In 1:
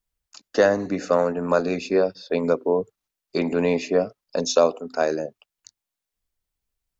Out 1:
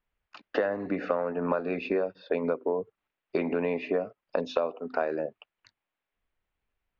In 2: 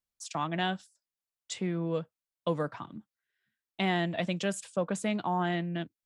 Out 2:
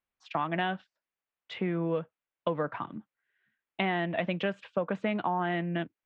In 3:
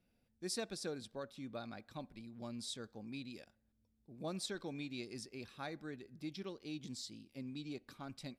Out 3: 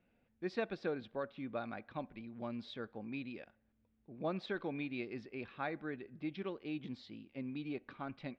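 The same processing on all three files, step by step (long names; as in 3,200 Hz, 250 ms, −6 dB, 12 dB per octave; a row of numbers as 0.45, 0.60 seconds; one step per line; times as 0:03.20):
low-pass filter 2,800 Hz 24 dB per octave
low-shelf EQ 210 Hz −7.5 dB
downward compressor 6 to 1, threshold −32 dBFS
level +6.5 dB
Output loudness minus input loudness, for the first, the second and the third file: −7.5, +0.5, +3.0 LU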